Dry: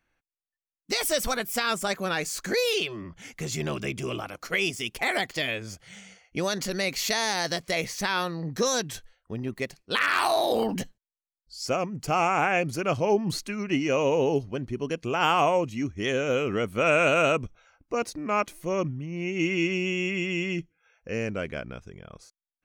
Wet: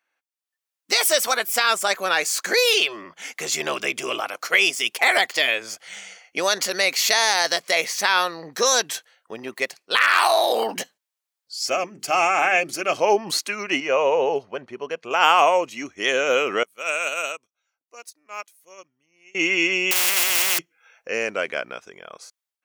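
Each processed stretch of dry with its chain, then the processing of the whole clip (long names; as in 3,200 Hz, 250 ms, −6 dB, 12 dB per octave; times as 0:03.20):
0:11.59–0:12.97: parametric band 990 Hz −6 dB 1.2 octaves + mains-hum notches 50/100/150/200/250/300/350/400/450 Hz + notch comb filter 480 Hz
0:13.80–0:15.11: low-pass filter 1,600 Hz 6 dB per octave + parametric band 300 Hz −8.5 dB 0.46 octaves
0:16.63–0:19.35: first-order pre-emphasis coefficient 0.8 + expander for the loud parts 2.5 to 1, over −43 dBFS
0:19.91–0:20.59: one scale factor per block 5 bits + every bin compressed towards the loudest bin 4 to 1
whole clip: high-pass filter 580 Hz 12 dB per octave; automatic gain control gain up to 10 dB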